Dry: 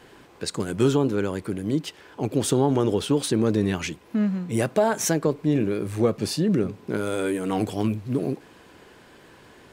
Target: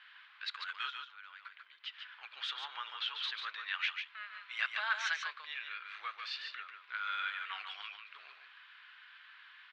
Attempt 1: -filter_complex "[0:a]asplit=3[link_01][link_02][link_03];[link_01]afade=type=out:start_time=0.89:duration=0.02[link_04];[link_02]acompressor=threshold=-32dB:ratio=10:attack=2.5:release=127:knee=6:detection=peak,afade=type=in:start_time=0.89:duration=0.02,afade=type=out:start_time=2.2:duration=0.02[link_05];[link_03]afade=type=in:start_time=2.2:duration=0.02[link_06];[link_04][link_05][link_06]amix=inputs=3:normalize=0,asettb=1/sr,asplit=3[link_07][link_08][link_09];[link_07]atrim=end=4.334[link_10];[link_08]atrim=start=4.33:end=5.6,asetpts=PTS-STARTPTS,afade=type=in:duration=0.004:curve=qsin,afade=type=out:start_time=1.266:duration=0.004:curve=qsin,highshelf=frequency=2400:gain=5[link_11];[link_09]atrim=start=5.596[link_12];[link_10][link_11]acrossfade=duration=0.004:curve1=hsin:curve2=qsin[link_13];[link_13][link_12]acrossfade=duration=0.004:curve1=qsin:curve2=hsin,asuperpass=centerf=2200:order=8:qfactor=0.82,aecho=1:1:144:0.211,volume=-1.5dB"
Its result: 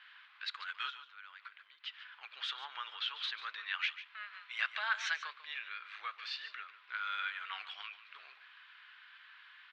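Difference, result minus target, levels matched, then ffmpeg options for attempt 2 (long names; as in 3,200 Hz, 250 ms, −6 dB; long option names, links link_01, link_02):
echo-to-direct −7.5 dB
-filter_complex "[0:a]asplit=3[link_01][link_02][link_03];[link_01]afade=type=out:start_time=0.89:duration=0.02[link_04];[link_02]acompressor=threshold=-32dB:ratio=10:attack=2.5:release=127:knee=6:detection=peak,afade=type=in:start_time=0.89:duration=0.02,afade=type=out:start_time=2.2:duration=0.02[link_05];[link_03]afade=type=in:start_time=2.2:duration=0.02[link_06];[link_04][link_05][link_06]amix=inputs=3:normalize=0,asettb=1/sr,asplit=3[link_07][link_08][link_09];[link_07]atrim=end=4.334[link_10];[link_08]atrim=start=4.33:end=5.6,asetpts=PTS-STARTPTS,afade=type=in:duration=0.004:curve=qsin,afade=type=out:start_time=1.266:duration=0.004:curve=qsin,highshelf=frequency=2400:gain=5[link_11];[link_09]atrim=start=5.596[link_12];[link_10][link_11]acrossfade=duration=0.004:curve1=hsin:curve2=qsin[link_13];[link_13][link_12]acrossfade=duration=0.004:curve1=qsin:curve2=hsin,asuperpass=centerf=2200:order=8:qfactor=0.82,aecho=1:1:144:0.501,volume=-1.5dB"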